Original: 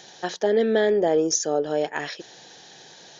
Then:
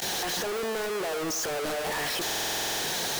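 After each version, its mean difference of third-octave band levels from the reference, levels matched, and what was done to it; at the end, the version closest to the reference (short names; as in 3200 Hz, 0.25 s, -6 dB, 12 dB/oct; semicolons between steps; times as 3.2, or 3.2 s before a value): 19.0 dB: infinite clipping; limiter -29 dBFS, peak gain reduction 22 dB; on a send: narrowing echo 0.101 s, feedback 78%, band-pass 980 Hz, level -9.5 dB; on the sum: stuck buffer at 2.25, samples 2048, times 11; gain -1.5 dB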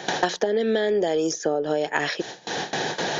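7.5 dB: compressor, threshold -25 dBFS, peak gain reduction 9 dB; gate with hold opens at -36 dBFS; three-band squash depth 100%; gain +5.5 dB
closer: second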